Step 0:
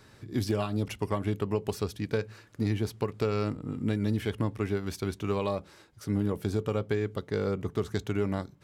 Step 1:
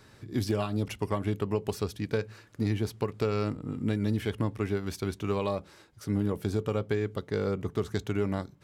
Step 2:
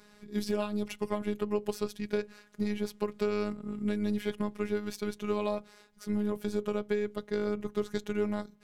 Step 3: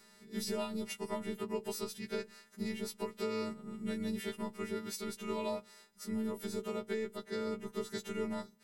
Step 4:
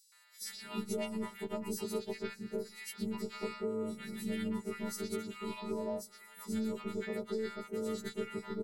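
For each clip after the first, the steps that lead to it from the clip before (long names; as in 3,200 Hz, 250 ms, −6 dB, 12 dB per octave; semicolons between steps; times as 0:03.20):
no processing that can be heard
phases set to zero 208 Hz
every partial snapped to a pitch grid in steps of 2 semitones; level −4.5 dB
three-band delay without the direct sound highs, mids, lows 120/410 ms, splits 940/4,600 Hz; level +1 dB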